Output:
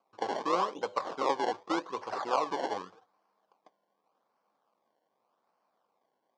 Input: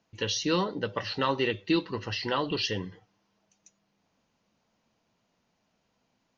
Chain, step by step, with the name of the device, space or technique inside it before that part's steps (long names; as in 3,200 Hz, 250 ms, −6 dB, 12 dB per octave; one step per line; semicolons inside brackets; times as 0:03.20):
circuit-bent sampling toy (sample-and-hold swept by an LFO 24×, swing 100% 0.85 Hz; loudspeaker in its box 410–5,600 Hz, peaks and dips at 510 Hz +3 dB, 790 Hz +6 dB, 1,100 Hz +9 dB, 1,900 Hz −6 dB, 2,700 Hz −5 dB, 3,900 Hz −3 dB)
level −3 dB